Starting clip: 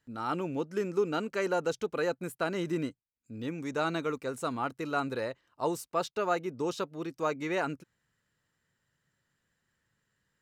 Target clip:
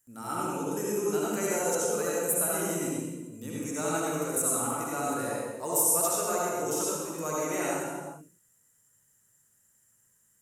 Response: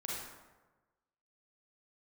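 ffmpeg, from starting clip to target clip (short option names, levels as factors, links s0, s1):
-filter_complex "[0:a]aexciter=amount=11.6:drive=8.2:freq=6400[s0];[1:a]atrim=start_sample=2205,afade=t=out:st=0.37:d=0.01,atrim=end_sample=16758,asetrate=26019,aresample=44100[s1];[s0][s1]afir=irnorm=-1:irlink=0,volume=0.596"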